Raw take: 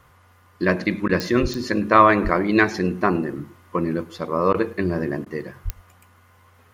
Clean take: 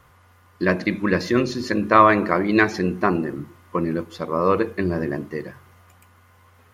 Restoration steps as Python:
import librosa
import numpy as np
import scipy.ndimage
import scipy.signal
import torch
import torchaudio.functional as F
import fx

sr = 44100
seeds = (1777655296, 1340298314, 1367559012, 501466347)

y = fx.fix_declick_ar(x, sr, threshold=10.0)
y = fx.highpass(y, sr, hz=140.0, slope=24, at=(1.41, 1.53), fade=0.02)
y = fx.highpass(y, sr, hz=140.0, slope=24, at=(2.23, 2.35), fade=0.02)
y = fx.highpass(y, sr, hz=140.0, slope=24, at=(5.64, 5.76), fade=0.02)
y = fx.fix_interpolate(y, sr, at_s=(1.08, 4.53, 5.25), length_ms=11.0)
y = fx.fix_echo_inverse(y, sr, delay_ms=105, level_db=-23.5)